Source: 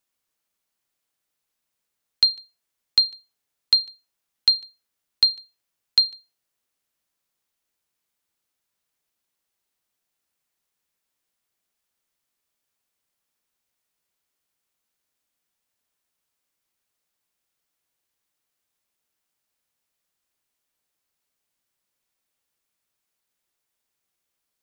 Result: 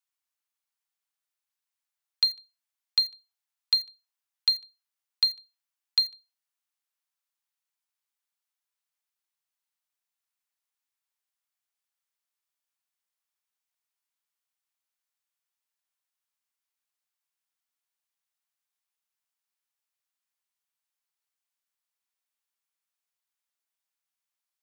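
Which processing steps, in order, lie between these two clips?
high-pass filter 740 Hz 24 dB per octave
in parallel at −8 dB: bit reduction 5 bits
on the sum: level −8.5 dB

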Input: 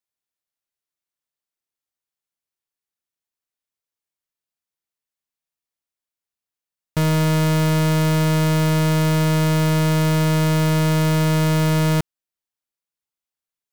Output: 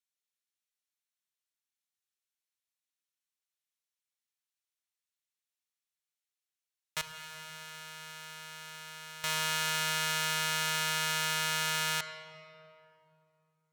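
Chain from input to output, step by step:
meter weighting curve A
0:07.01–0:09.24: noise gate −20 dBFS, range −18 dB
guitar amp tone stack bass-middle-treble 10-0-10
notch filter 4,800 Hz, Q 14
convolution reverb RT60 2.9 s, pre-delay 36 ms, DRR 9 dB

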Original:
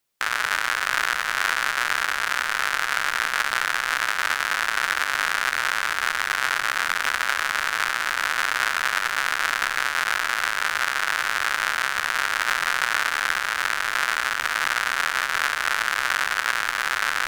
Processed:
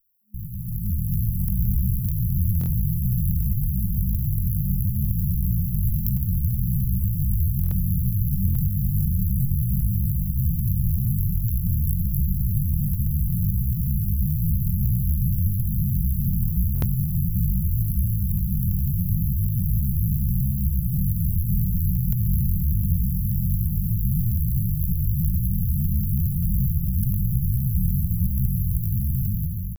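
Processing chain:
lower of the sound and its delayed copy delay 1.5 ms
first-order pre-emphasis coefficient 0.8
brick-wall band-stop 210–11,000 Hz
low-shelf EQ 170 Hz +11 dB
in parallel at +2.5 dB: brickwall limiter −31 dBFS, peak gain reduction 10.5 dB
on the sum: automatic gain control gain up to 11.5 dB
tempo change 0.58×
buffer that repeats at 0:02.59/0:07.62/0:08.46/0:16.73, samples 1,024, times 3

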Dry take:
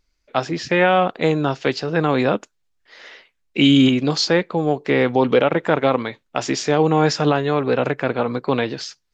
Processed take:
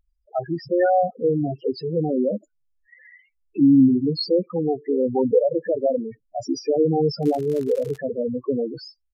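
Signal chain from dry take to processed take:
spectral peaks only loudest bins 4
0:07.22–0:07.96: surface crackle 130 per second −29 dBFS
downsampling to 32,000 Hz

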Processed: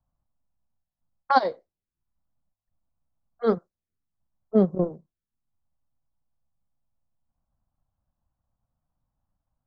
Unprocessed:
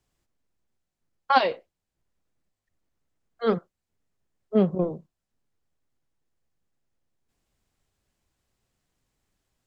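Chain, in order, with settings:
phaser swept by the level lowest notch 390 Hz, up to 2,700 Hz, full sweep at −30 dBFS
transient designer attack +1 dB, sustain −7 dB
low-pass that shuts in the quiet parts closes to 1,000 Hz, open at −22.5 dBFS
level +1 dB

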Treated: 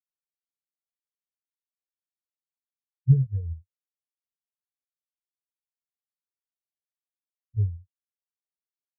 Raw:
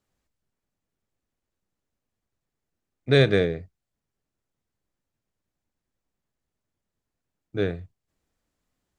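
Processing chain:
linear-prediction vocoder at 8 kHz pitch kept
high-pass filter 69 Hz 12 dB per octave
comb filter 1.3 ms, depth 57%
downward compressor 16 to 1, threshold −25 dBFS, peak gain reduction 12.5 dB
low-shelf EQ 160 Hz +9.5 dB
every bin expanded away from the loudest bin 4 to 1
level +5 dB

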